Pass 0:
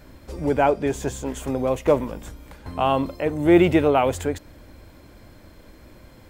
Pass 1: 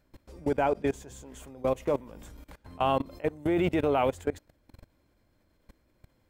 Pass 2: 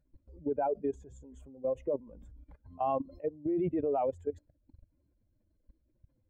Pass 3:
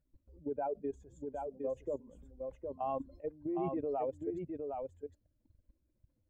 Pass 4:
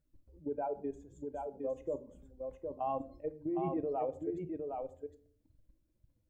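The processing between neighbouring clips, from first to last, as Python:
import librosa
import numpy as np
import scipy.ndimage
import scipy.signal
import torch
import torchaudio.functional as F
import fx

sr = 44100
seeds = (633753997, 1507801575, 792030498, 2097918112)

y1 = fx.level_steps(x, sr, step_db=22)
y1 = y1 * librosa.db_to_amplitude(-2.5)
y2 = fx.spec_expand(y1, sr, power=2.0)
y2 = y2 * librosa.db_to_amplitude(-4.5)
y3 = y2 + 10.0 ** (-4.5 / 20.0) * np.pad(y2, (int(761 * sr / 1000.0), 0))[:len(y2)]
y3 = y3 * librosa.db_to_amplitude(-5.5)
y4 = fx.room_shoebox(y3, sr, seeds[0], volume_m3=540.0, walls='furnished', distance_m=0.59)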